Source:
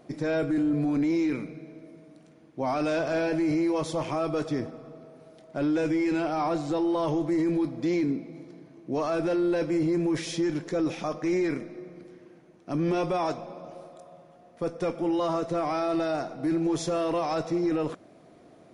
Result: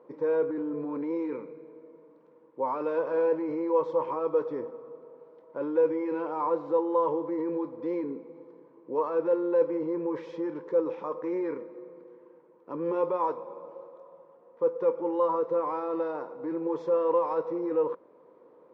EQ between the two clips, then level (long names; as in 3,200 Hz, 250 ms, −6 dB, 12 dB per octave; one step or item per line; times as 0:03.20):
pair of resonant band-passes 690 Hz, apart 0.94 octaves
high-frequency loss of the air 110 metres
+8.0 dB